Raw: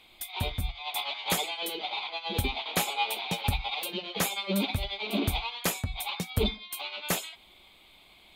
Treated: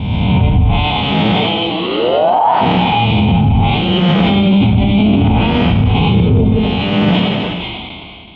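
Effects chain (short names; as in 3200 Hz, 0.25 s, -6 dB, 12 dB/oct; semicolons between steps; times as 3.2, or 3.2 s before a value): spectral swells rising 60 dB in 1.59 s; gate with hold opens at -43 dBFS; tilt -4 dB/oct; treble ducked by the level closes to 1300 Hz, closed at -6.5 dBFS; 1.69–2.6 ring modulator 280 Hz -> 1100 Hz; speaker cabinet 130–3300 Hz, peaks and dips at 140 Hz -5 dB, 380 Hz -6 dB, 550 Hz -7 dB, 1200 Hz -5 dB, 1700 Hz -9 dB, 3000 Hz +9 dB; non-linear reverb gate 0.5 s falling, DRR 5.5 dB; maximiser +17 dB; sustainer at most 23 dB/s; gain -3 dB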